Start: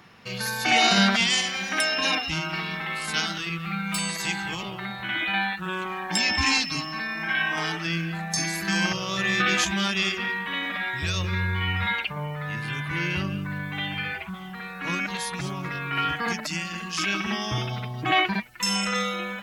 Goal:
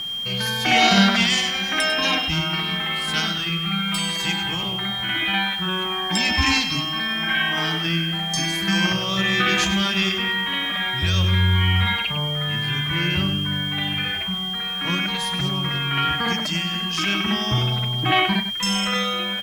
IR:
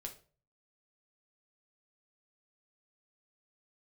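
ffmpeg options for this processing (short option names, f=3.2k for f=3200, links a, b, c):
-filter_complex "[0:a]aeval=exprs='val(0)+0.0398*sin(2*PI*3200*n/s)':c=same,acrusher=bits=8:dc=4:mix=0:aa=0.000001,bass=f=250:g=5,treble=f=4k:g=-3,asplit=2[a][b];[b]adelay=99.13,volume=-10dB,highshelf=f=4k:g=-2.23[c];[a][c]amix=inputs=2:normalize=0,volume=2.5dB"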